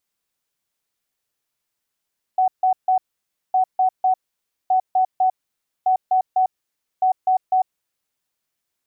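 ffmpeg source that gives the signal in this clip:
-f lavfi -i "aevalsrc='0.211*sin(2*PI*748*t)*clip(min(mod(mod(t,1.16),0.25),0.1-mod(mod(t,1.16),0.25))/0.005,0,1)*lt(mod(t,1.16),0.75)':d=5.8:s=44100"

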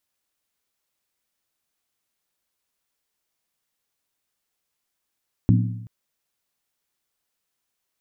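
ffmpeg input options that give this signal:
-f lavfi -i "aevalsrc='0.237*pow(10,-3*t/0.89)*sin(2*PI*113*t)+0.158*pow(10,-3*t/0.705)*sin(2*PI*180.1*t)+0.106*pow(10,-3*t/0.609)*sin(2*PI*241.4*t)+0.0708*pow(10,-3*t/0.587)*sin(2*PI*259.4*t)+0.0473*pow(10,-3*t/0.546)*sin(2*PI*299.8*t)':d=0.38:s=44100"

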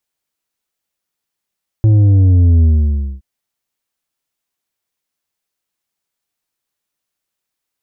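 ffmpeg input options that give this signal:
-f lavfi -i "aevalsrc='0.447*clip((1.37-t)/0.58,0,1)*tanh(2.11*sin(2*PI*110*1.37/log(65/110)*(exp(log(65/110)*t/1.37)-1)))/tanh(2.11)':d=1.37:s=44100"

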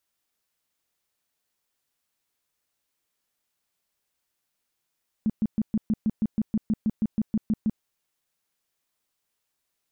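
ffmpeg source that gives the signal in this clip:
-f lavfi -i "aevalsrc='0.106*sin(2*PI*217*mod(t,0.16))*lt(mod(t,0.16),8/217)':d=2.56:s=44100"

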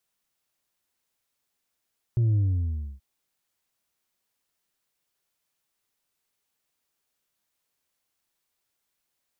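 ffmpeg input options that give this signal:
-f lavfi -i "aevalsrc='0.106*clip((0.83-t)/0.64,0,1)*tanh(1.41*sin(2*PI*120*0.83/log(65/120)*(exp(log(65/120)*t/0.83)-1)))/tanh(1.41)':d=0.83:s=44100"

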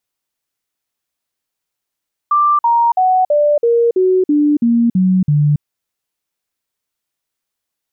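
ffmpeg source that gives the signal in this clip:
-f lavfi -i "aevalsrc='0.355*clip(min(mod(t,0.33),0.28-mod(t,0.33))/0.005,0,1)*sin(2*PI*1180*pow(2,-floor(t/0.33)/3)*mod(t,0.33))':d=3.3:s=44100"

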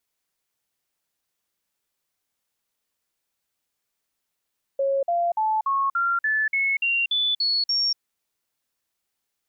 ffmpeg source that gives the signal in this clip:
-f lavfi -i "aevalsrc='0.106*clip(min(mod(t,0.29),0.24-mod(t,0.29))/0.005,0,1)*sin(2*PI*548*pow(2,floor(t/0.29)/3)*mod(t,0.29))':d=3.19:s=44100"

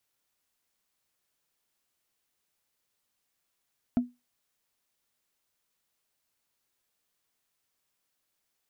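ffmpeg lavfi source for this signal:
-f lavfi -i "aevalsrc='0.133*pow(10,-3*t/0.22)*sin(2*PI*245*t)+0.0335*pow(10,-3*t/0.065)*sin(2*PI*675.5*t)+0.00841*pow(10,-3*t/0.029)*sin(2*PI*1324*t)+0.00211*pow(10,-3*t/0.016)*sin(2*PI*2188.6*t)+0.000531*pow(10,-3*t/0.01)*sin(2*PI*3268.3*t)':d=0.45:s=44100"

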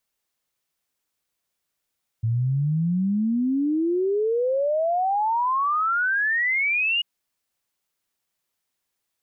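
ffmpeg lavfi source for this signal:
-f lavfi -i "aevalsrc='0.106*clip(min(t,4.79-t)/0.01,0,1)*sin(2*PI*110*4.79/log(2900/110)*(exp(log(2900/110)*t/4.79)-1))':d=4.79:s=44100"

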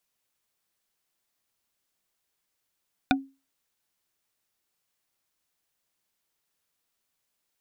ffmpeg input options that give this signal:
-f lavfi -i "aevalsrc='0.141*pow(10,-3*t/0.29)*sin(2*PI*271*t)+0.141*pow(10,-3*t/0.086)*sin(2*PI*747.1*t)+0.141*pow(10,-3*t/0.038)*sin(2*PI*1464.5*t)+0.141*pow(10,-3*t/0.021)*sin(2*PI*2420.8*t)+0.141*pow(10,-3*t/0.013)*sin(2*PI*3615.1*t)':d=0.45:s=44100"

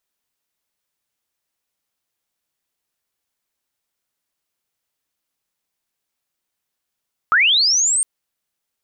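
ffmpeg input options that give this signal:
-f lavfi -i "aevalsrc='pow(10,(-10.5-4.5*t/0.71)/20)*sin(2*PI*(1200*t+7600*t*t/(2*0.71)))':d=0.71:s=44100"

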